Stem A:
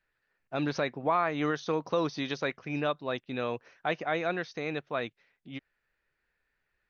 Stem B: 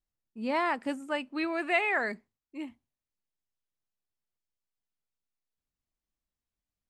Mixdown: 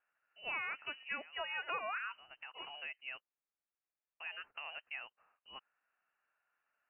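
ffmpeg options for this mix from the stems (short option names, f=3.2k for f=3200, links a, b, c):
-filter_complex "[0:a]acompressor=threshold=-36dB:ratio=12,volume=-3.5dB,asplit=3[a][b][c];[a]atrim=end=3.22,asetpts=PTS-STARTPTS,afade=t=out:st=3.216:d=0.004:c=hsin[d];[b]atrim=start=3.22:end=4.2,asetpts=PTS-STARTPTS,volume=0[e];[c]atrim=start=4.2,asetpts=PTS-STARTPTS,afade=t=in:d=0.004:c=hsin[f];[d][e][f]concat=n=3:v=0:a=1[g];[1:a]aemphasis=mode=production:type=riaa,volume=-2.5dB,asplit=2[h][i];[i]apad=whole_len=304121[j];[g][j]sidechaincompress=threshold=-40dB:ratio=8:attack=48:release=763[k];[k][h]amix=inputs=2:normalize=0,highpass=390,lowpass=f=2.7k:t=q:w=0.5098,lowpass=f=2.7k:t=q:w=0.6013,lowpass=f=2.7k:t=q:w=0.9,lowpass=f=2.7k:t=q:w=2.563,afreqshift=-3200,acompressor=threshold=-37dB:ratio=6"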